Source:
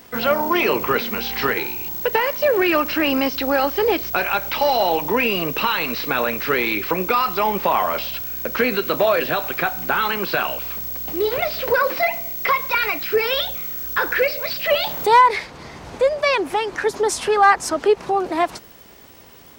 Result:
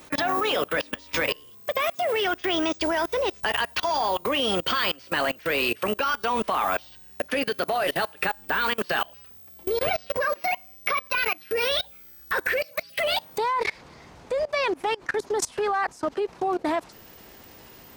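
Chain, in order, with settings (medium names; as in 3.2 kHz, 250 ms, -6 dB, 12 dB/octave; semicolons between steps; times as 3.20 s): gliding tape speed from 123% -> 95%; level held to a coarse grid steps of 24 dB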